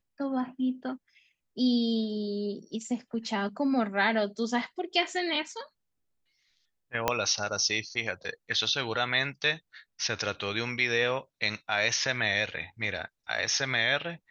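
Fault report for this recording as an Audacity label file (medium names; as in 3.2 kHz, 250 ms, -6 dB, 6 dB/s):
7.080000	7.080000	pop -9 dBFS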